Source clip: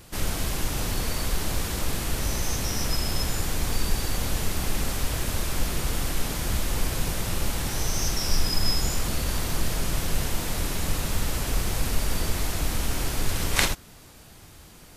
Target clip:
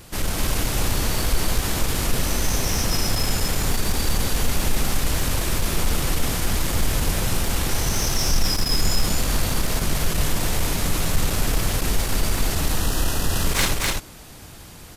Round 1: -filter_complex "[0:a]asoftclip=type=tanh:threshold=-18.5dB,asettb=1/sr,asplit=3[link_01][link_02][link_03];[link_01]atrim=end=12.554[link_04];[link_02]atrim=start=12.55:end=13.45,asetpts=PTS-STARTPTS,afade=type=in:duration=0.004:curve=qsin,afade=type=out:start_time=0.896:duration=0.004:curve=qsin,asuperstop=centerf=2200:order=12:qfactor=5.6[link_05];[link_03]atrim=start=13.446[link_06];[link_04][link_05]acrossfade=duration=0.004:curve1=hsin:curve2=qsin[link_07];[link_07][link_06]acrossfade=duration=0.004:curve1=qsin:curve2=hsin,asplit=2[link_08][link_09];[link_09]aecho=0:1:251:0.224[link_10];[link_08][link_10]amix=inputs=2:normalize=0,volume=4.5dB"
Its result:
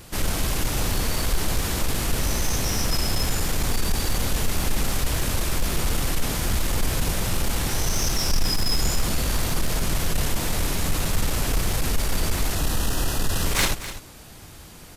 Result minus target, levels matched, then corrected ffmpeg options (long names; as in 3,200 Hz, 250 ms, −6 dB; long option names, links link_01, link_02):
echo-to-direct −11 dB
-filter_complex "[0:a]asoftclip=type=tanh:threshold=-18.5dB,asettb=1/sr,asplit=3[link_01][link_02][link_03];[link_01]atrim=end=12.554[link_04];[link_02]atrim=start=12.55:end=13.45,asetpts=PTS-STARTPTS,afade=type=in:duration=0.004:curve=qsin,afade=type=out:start_time=0.896:duration=0.004:curve=qsin,asuperstop=centerf=2200:order=12:qfactor=5.6[link_05];[link_03]atrim=start=13.446[link_06];[link_04][link_05]acrossfade=duration=0.004:curve1=hsin:curve2=qsin[link_07];[link_07][link_06]acrossfade=duration=0.004:curve1=qsin:curve2=hsin,asplit=2[link_08][link_09];[link_09]aecho=0:1:251:0.794[link_10];[link_08][link_10]amix=inputs=2:normalize=0,volume=4.5dB"